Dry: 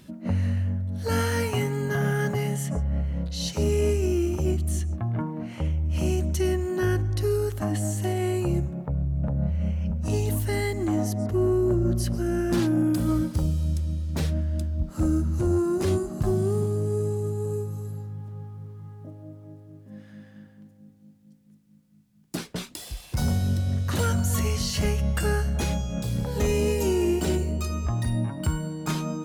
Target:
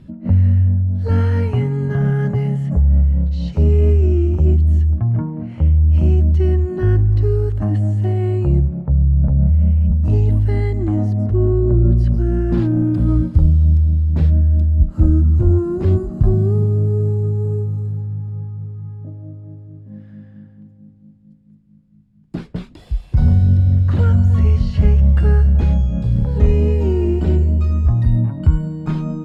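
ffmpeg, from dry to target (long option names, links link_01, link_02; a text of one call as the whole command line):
ffmpeg -i in.wav -filter_complex "[0:a]acrossover=split=4600[link_01][link_02];[link_02]acompressor=threshold=-44dB:ratio=4:attack=1:release=60[link_03];[link_01][link_03]amix=inputs=2:normalize=0,aemphasis=mode=reproduction:type=riaa,bandreject=frequency=6000:width=13,volume=-1dB" out.wav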